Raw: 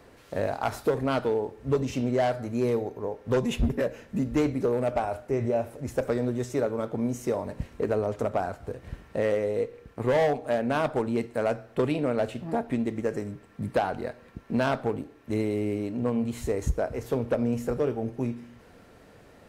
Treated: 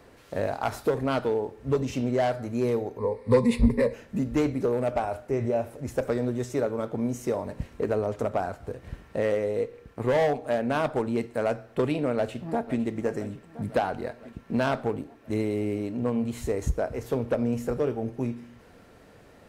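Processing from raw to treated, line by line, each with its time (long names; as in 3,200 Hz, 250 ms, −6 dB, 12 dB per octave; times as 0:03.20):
0:02.98–0:03.94: EQ curve with evenly spaced ripples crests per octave 0.94, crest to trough 15 dB
0:12.16–0:12.79: delay throw 510 ms, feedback 70%, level −14.5 dB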